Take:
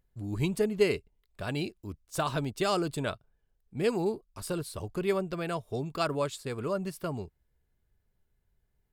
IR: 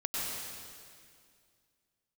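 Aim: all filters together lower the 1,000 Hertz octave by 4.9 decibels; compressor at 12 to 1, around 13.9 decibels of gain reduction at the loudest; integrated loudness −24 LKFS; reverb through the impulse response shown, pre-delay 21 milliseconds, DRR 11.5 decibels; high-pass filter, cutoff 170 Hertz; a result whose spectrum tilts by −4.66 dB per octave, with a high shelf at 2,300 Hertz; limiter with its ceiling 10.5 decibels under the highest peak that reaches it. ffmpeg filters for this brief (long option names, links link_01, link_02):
-filter_complex "[0:a]highpass=170,equalizer=frequency=1000:width_type=o:gain=-7.5,highshelf=frequency=2300:gain=3,acompressor=threshold=-34dB:ratio=12,alimiter=level_in=10.5dB:limit=-24dB:level=0:latency=1,volume=-10.5dB,asplit=2[link_01][link_02];[1:a]atrim=start_sample=2205,adelay=21[link_03];[link_02][link_03]afir=irnorm=-1:irlink=0,volume=-17.5dB[link_04];[link_01][link_04]amix=inputs=2:normalize=0,volume=20dB"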